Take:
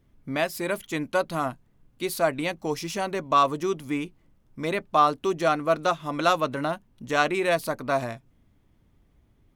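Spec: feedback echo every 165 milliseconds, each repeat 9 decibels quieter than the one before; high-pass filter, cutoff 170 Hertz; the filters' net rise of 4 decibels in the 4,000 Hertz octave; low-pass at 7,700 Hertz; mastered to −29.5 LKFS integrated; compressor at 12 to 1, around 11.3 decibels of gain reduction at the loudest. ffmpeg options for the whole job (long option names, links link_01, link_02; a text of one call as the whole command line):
ffmpeg -i in.wav -af "highpass=170,lowpass=7700,equalizer=frequency=4000:width_type=o:gain=5,acompressor=threshold=-26dB:ratio=12,aecho=1:1:165|330|495|660:0.355|0.124|0.0435|0.0152,volume=2.5dB" out.wav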